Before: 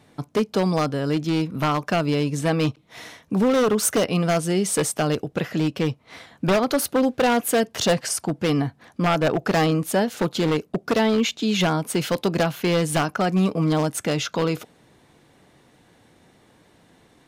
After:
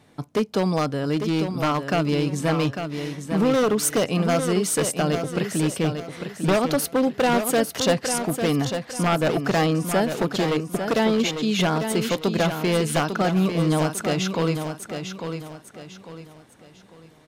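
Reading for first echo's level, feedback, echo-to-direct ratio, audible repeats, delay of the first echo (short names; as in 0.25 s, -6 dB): -7.5 dB, 34%, -7.0 dB, 3, 0.849 s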